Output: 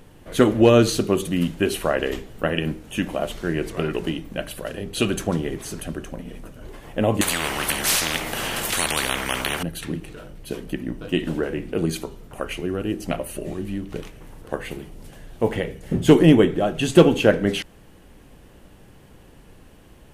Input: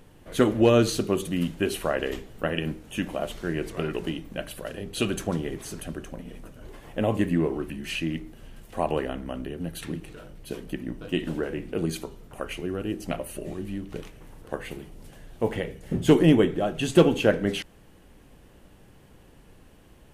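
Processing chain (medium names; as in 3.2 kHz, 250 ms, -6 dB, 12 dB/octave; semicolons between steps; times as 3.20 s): 7.21–9.63 s: spectrum-flattening compressor 10:1; trim +4.5 dB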